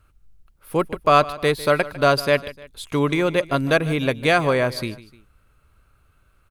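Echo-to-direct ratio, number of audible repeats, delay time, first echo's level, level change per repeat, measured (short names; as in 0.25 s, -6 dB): -16.5 dB, 2, 0.151 s, -17.5 dB, -7.0 dB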